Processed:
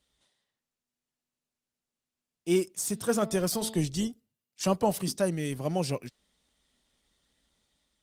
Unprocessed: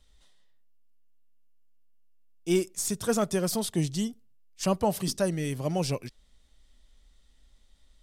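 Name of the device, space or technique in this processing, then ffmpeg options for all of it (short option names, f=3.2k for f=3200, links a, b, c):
video call: -filter_complex "[0:a]asplit=3[a][b][c];[a]afade=t=out:st=2.87:d=0.02[d];[b]bandreject=f=221.6:t=h:w=4,bandreject=f=443.2:t=h:w=4,bandreject=f=664.8:t=h:w=4,bandreject=f=886.4:t=h:w=4,bandreject=f=1.108k:t=h:w=4,bandreject=f=1.3296k:t=h:w=4,bandreject=f=1.5512k:t=h:w=4,bandreject=f=1.7728k:t=h:w=4,bandreject=f=1.9944k:t=h:w=4,bandreject=f=2.216k:t=h:w=4,bandreject=f=2.4376k:t=h:w=4,bandreject=f=2.6592k:t=h:w=4,bandreject=f=2.8808k:t=h:w=4,bandreject=f=3.1024k:t=h:w=4,bandreject=f=3.324k:t=h:w=4,bandreject=f=3.5456k:t=h:w=4,bandreject=f=3.7672k:t=h:w=4,bandreject=f=3.9888k:t=h:w=4,bandreject=f=4.2104k:t=h:w=4,bandreject=f=4.432k:t=h:w=4,bandreject=f=4.6536k:t=h:w=4,bandreject=f=4.8752k:t=h:w=4,bandreject=f=5.0968k:t=h:w=4,afade=t=in:st=2.87:d=0.02,afade=t=out:st=3.88:d=0.02[e];[c]afade=t=in:st=3.88:d=0.02[f];[d][e][f]amix=inputs=3:normalize=0,highpass=120,dynaudnorm=f=540:g=3:m=3.5dB,volume=-3.5dB" -ar 48000 -c:a libopus -b:a 24k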